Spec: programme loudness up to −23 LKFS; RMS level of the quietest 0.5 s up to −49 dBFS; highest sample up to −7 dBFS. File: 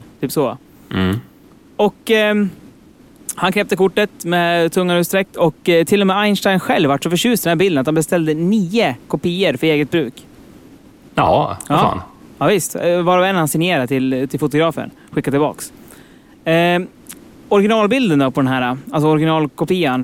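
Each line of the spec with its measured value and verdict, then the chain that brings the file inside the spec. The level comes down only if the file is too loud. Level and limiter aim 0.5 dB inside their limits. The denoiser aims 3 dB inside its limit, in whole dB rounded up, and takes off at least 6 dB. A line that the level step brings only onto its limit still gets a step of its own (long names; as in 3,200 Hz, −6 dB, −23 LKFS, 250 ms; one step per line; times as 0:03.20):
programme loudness −16.0 LKFS: out of spec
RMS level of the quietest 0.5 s −45 dBFS: out of spec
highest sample −1.5 dBFS: out of spec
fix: level −7.5 dB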